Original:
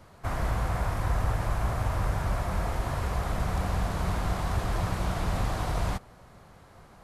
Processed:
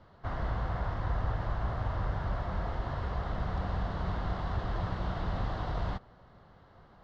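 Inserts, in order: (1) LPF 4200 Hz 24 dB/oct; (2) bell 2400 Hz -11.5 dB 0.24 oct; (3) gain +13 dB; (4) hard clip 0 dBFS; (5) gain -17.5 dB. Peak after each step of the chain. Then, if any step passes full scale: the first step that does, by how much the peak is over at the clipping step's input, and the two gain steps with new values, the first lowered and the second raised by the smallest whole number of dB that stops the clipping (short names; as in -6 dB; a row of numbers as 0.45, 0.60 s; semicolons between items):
-15.0, -15.0, -2.0, -2.0, -19.5 dBFS; no overload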